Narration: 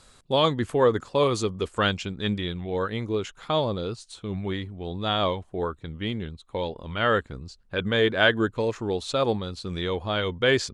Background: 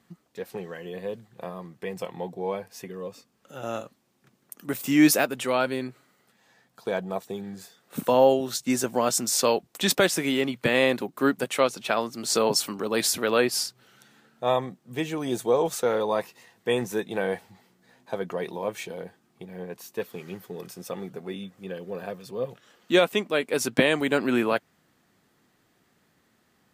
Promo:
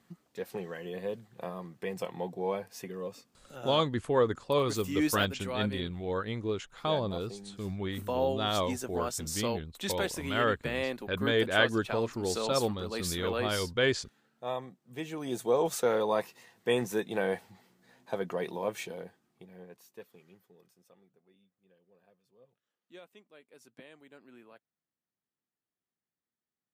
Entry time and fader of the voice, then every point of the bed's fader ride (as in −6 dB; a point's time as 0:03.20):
3.35 s, −5.5 dB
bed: 0:03.38 −2.5 dB
0:03.90 −11.5 dB
0:14.78 −11.5 dB
0:15.71 −3 dB
0:18.80 −3 dB
0:21.24 −31.5 dB